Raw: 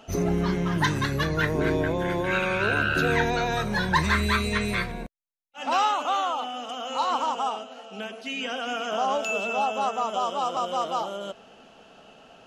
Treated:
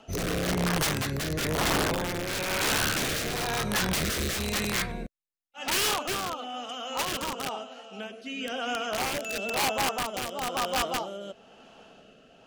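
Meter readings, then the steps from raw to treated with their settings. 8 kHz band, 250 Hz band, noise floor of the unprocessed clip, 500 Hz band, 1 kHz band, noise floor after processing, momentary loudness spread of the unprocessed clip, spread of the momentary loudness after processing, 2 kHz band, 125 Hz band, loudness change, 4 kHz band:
+9.0 dB, −4.0 dB, −52 dBFS, −4.0 dB, −6.5 dB, −56 dBFS, 11 LU, 11 LU, −4.0 dB, −4.5 dB, −2.5 dB, +2.5 dB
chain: wrap-around overflow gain 19.5 dB
rotating-speaker cabinet horn 1 Hz

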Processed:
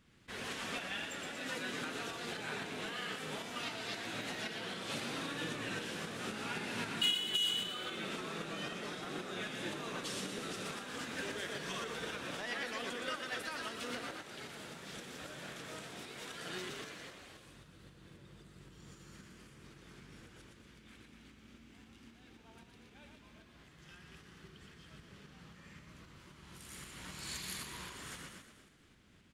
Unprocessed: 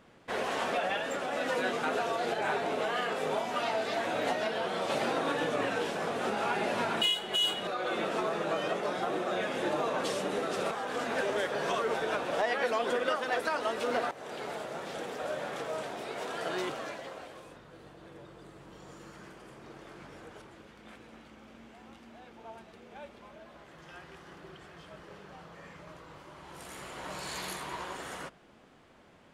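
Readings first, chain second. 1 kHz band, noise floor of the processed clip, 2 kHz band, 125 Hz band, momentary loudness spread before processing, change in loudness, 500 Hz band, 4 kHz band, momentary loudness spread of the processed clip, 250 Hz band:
−13.0 dB, −61 dBFS, −6.0 dB, −2.5 dB, 20 LU, −7.5 dB, −14.0 dB, −3.0 dB, 19 LU, −6.5 dB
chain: guitar amp tone stack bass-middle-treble 6-0-2
echo with shifted repeats 119 ms, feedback 56%, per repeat +38 Hz, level −6 dB
shaped tremolo saw up 3.8 Hz, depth 35%
level +14 dB

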